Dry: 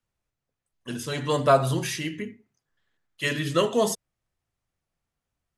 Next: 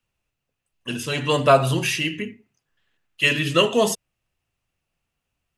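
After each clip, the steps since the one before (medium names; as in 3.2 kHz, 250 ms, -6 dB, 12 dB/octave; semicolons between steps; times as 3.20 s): peaking EQ 2.7 kHz +11 dB 0.32 oct; trim +3.5 dB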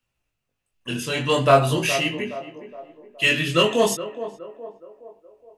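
chorus 0.44 Hz, delay 16.5 ms, depth 7.7 ms; in parallel at -6.5 dB: hard clipper -17.5 dBFS, distortion -9 dB; on the sum: band-passed feedback delay 418 ms, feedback 51%, band-pass 550 Hz, level -11 dB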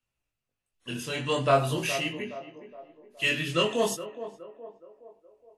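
trim -7 dB; WMA 64 kbps 32 kHz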